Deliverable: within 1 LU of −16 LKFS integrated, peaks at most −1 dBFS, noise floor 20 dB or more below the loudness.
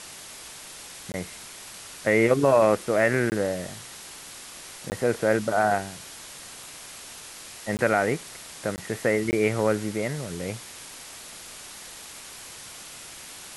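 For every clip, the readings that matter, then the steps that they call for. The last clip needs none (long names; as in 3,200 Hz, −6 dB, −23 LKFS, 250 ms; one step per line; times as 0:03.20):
number of dropouts 6; longest dropout 19 ms; background noise floor −43 dBFS; target noise floor −45 dBFS; integrated loudness −25.0 LKFS; sample peak −7.0 dBFS; target loudness −16.0 LKFS
→ repair the gap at 0:01.12/0:03.30/0:04.90/0:07.77/0:08.76/0:09.31, 19 ms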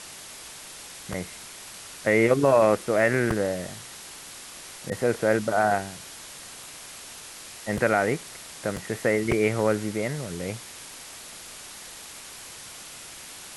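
number of dropouts 0; background noise floor −43 dBFS; target noise floor −45 dBFS
→ broadband denoise 6 dB, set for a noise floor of −43 dBFS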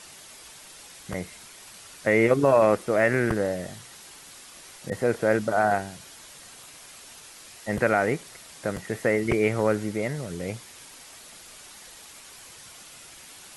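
background noise floor −47 dBFS; integrated loudness −25.0 LKFS; sample peak −7.5 dBFS; target loudness −16.0 LKFS
→ level +9 dB
brickwall limiter −1 dBFS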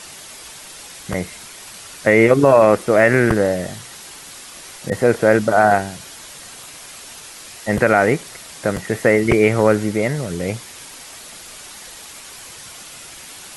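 integrated loudness −16.5 LKFS; sample peak −1.0 dBFS; background noise floor −38 dBFS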